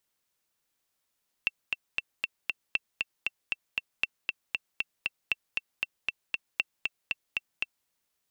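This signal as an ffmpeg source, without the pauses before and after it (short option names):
-f lavfi -i "aevalsrc='pow(10,(-12-3*gte(mod(t,5*60/234),60/234))/20)*sin(2*PI*2690*mod(t,60/234))*exp(-6.91*mod(t,60/234)/0.03)':d=6.41:s=44100"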